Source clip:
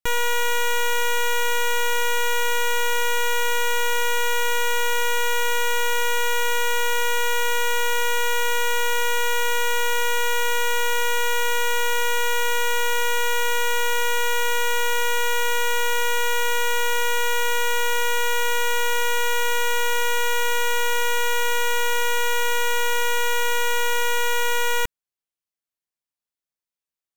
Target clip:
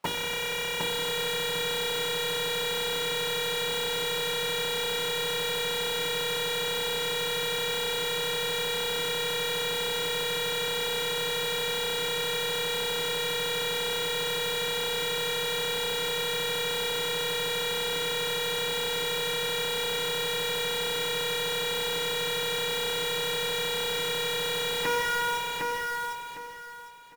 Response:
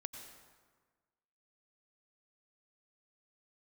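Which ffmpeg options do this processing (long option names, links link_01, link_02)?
-filter_complex "[0:a]lowpass=frequency=2500:poles=1,aecho=1:1:7:0.32,asplit=2[link_01][link_02];[1:a]atrim=start_sample=2205[link_03];[link_02][link_03]afir=irnorm=-1:irlink=0,volume=-8dB[link_04];[link_01][link_04]amix=inputs=2:normalize=0,afftfilt=real='re*lt(hypot(re,im),0.158)':imag='im*lt(hypot(re,im),0.158)':win_size=1024:overlap=0.75,adynamicequalizer=threshold=0.00178:dfrequency=1700:dqfactor=2.5:tfrequency=1700:tqfactor=2.5:attack=5:release=100:ratio=0.375:range=1.5:mode=boostabove:tftype=bell,bandreject=frequency=50:width_type=h:width=6,bandreject=frequency=100:width_type=h:width=6,bandreject=frequency=150:width_type=h:width=6,bandreject=frequency=200:width_type=h:width=6,bandreject=frequency=250:width_type=h:width=6,bandreject=frequency=300:width_type=h:width=6,bandreject=frequency=350:width_type=h:width=6,bandreject=frequency=400:width_type=h:width=6,bandreject=frequency=450:width_type=h:width=6,bandreject=frequency=500:width_type=h:width=6,asplit=2[link_05][link_06];[link_06]highpass=frequency=720:poles=1,volume=38dB,asoftclip=type=tanh:threshold=-18dB[link_07];[link_05][link_07]amix=inputs=2:normalize=0,lowpass=frequency=1200:poles=1,volume=-6dB,equalizer=frequency=170:width_type=o:width=0.28:gain=7,acrusher=bits=2:mode=log:mix=0:aa=0.000001,aecho=1:1:756|1512|2268|3024:0.668|0.174|0.0452|0.0117"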